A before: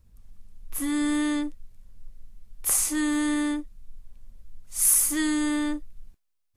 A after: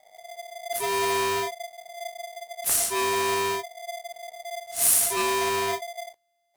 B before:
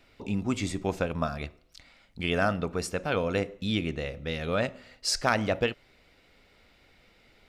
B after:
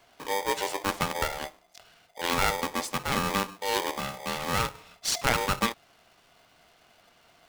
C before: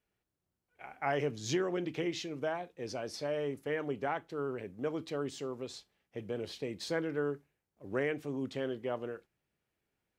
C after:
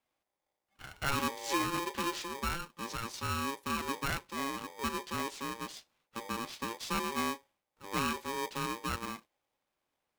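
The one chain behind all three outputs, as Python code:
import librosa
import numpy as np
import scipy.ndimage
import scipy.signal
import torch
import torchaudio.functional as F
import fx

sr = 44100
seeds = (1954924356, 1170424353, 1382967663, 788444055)

y = x * np.sign(np.sin(2.0 * np.pi * 690.0 * np.arange(len(x)) / sr))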